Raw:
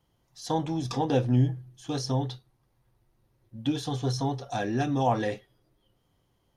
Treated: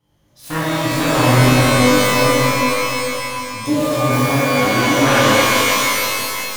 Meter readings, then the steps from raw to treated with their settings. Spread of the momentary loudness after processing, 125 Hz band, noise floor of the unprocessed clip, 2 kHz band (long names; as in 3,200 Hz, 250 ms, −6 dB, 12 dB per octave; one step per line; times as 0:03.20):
9 LU, +10.0 dB, −72 dBFS, +26.0 dB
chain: phase distortion by the signal itself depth 0.81 ms
reverb with rising layers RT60 2.9 s, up +12 semitones, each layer −2 dB, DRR −12 dB
level −1 dB